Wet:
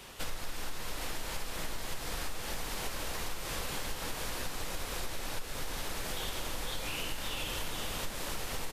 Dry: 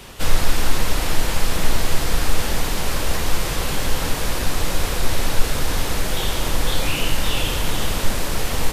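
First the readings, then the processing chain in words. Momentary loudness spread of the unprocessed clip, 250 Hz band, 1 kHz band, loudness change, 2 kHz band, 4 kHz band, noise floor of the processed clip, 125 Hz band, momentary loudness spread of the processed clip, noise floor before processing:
2 LU, -17.0 dB, -13.5 dB, -14.5 dB, -13.5 dB, -13.0 dB, -41 dBFS, -19.0 dB, 3 LU, -25 dBFS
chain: low shelf 300 Hz -6.5 dB; on a send: echo 0.488 s -10 dB; on the sum: compressor, threshold -24 dBFS, peak gain reduction 12.5 dB; gain -8 dB

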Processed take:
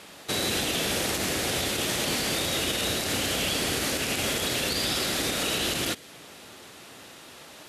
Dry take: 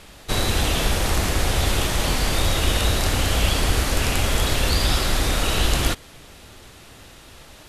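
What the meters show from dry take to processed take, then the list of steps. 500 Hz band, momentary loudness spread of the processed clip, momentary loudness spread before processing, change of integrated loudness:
-3.5 dB, 20 LU, 2 LU, -4.5 dB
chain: HPF 190 Hz 12 dB/oct; dynamic EQ 1000 Hz, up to -7 dB, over -43 dBFS, Q 1.3; limiter -17.5 dBFS, peak gain reduction 8 dB

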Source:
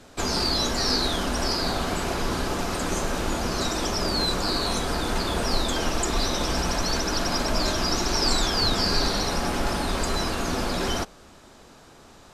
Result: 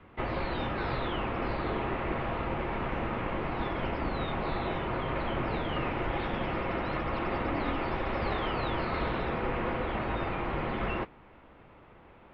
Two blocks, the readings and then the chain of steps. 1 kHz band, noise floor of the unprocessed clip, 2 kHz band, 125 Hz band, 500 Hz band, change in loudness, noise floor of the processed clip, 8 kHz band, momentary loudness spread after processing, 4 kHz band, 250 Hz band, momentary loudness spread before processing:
-4.0 dB, -50 dBFS, -5.0 dB, -4.0 dB, -4.5 dB, -7.5 dB, -55 dBFS, under -40 dB, 2 LU, -18.5 dB, -5.5 dB, 5 LU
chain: modulation noise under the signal 11 dB; mistuned SSB -340 Hz 310–2900 Hz; gain -2 dB

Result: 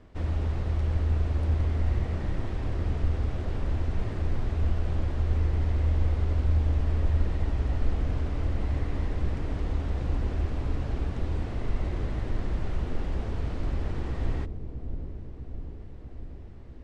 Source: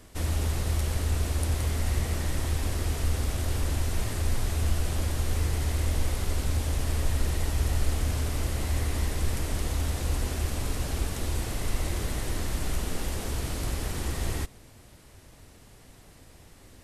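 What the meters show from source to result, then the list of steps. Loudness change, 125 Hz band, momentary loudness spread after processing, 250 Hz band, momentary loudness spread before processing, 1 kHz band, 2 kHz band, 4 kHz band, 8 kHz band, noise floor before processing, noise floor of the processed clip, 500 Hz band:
0.0 dB, +1.0 dB, 12 LU, +0.5 dB, 4 LU, -3.0 dB, -6.0 dB, -12.0 dB, under -20 dB, -53 dBFS, -41 dBFS, -1.0 dB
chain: tape spacing loss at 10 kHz 32 dB; dark delay 0.646 s, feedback 69%, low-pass 430 Hz, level -7 dB

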